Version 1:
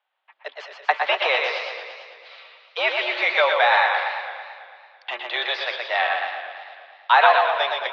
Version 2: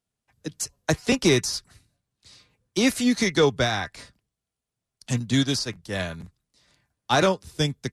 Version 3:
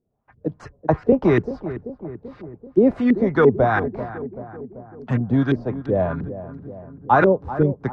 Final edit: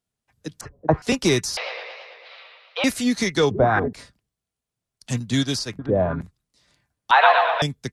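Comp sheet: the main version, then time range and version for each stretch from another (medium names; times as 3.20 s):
2
0.61–1.02 s: from 3
1.57–2.84 s: from 1
3.51–3.93 s: from 3
5.79–6.21 s: from 3
7.11–7.62 s: from 1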